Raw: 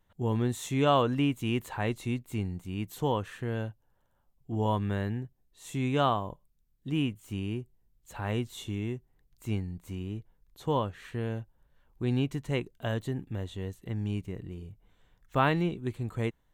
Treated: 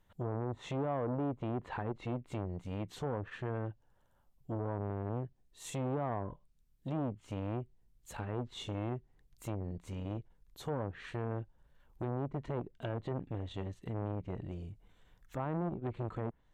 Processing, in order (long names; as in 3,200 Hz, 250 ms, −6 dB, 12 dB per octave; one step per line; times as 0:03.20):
treble cut that deepens with the level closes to 680 Hz, closed at −25 dBFS
brickwall limiter −25.5 dBFS, peak gain reduction 10 dB
saturating transformer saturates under 430 Hz
level +1 dB